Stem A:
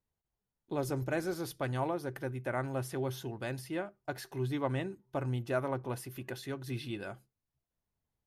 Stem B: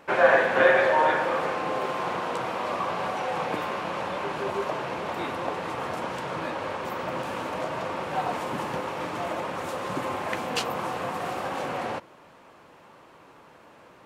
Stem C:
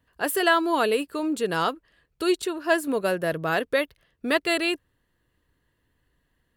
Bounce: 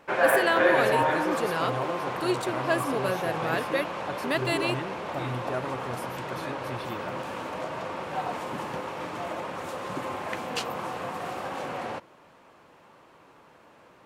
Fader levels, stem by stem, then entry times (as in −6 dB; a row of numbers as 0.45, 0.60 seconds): 0.0, −3.0, −5.0 decibels; 0.00, 0.00, 0.00 seconds